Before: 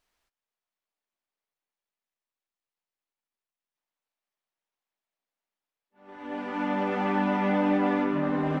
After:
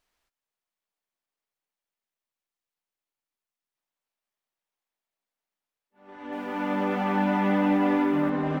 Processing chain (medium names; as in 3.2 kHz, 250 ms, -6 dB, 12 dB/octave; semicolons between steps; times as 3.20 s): 6.14–8.30 s: bit-crushed delay 184 ms, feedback 55%, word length 9-bit, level -8 dB